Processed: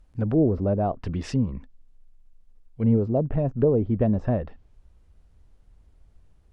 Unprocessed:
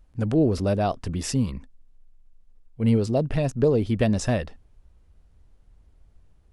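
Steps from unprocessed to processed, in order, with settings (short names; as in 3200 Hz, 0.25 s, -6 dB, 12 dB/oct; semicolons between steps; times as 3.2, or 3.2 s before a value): treble ducked by the level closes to 910 Hz, closed at -20.5 dBFS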